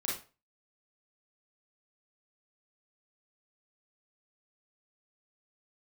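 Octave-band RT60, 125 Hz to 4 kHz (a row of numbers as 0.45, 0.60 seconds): 0.35, 0.30, 0.35, 0.35, 0.30, 0.25 seconds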